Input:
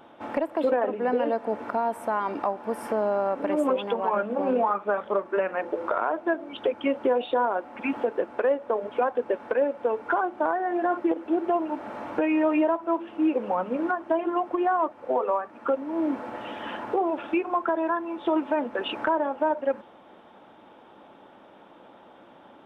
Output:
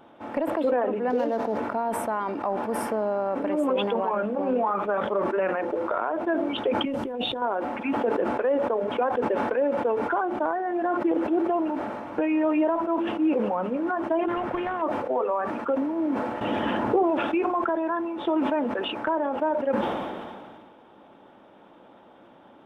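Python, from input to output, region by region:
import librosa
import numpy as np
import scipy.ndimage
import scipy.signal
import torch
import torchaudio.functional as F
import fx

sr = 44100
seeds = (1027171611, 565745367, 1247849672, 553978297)

y = fx.chain(x, sr, fx.median_filter(points=15),
    fx.highpass(hz=59.0, slope=12), at=(1.1, 1.58))
y = fx.chain(y, sr, fx.bass_treble(bass_db=12, treble_db=14),
    fx.over_compress(threshold_db=-30.0, ratio=-1.0), at=(6.85, 7.42))
y = fx.chain(y, sr, fx.high_shelf(hz=2300.0, db=-12.0),
    fx.spectral_comp(ratio=2.0), at=(14.28, 14.82))
y = fx.chain(y, sr, fx.low_shelf(hz=460.0, db=8.0),
    fx.env_flatten(amount_pct=50), at=(16.41, 17.03))
y = fx.low_shelf(y, sr, hz=460.0, db=4.0)
y = fx.sustainer(y, sr, db_per_s=29.0)
y = y * librosa.db_to_amplitude(-3.0)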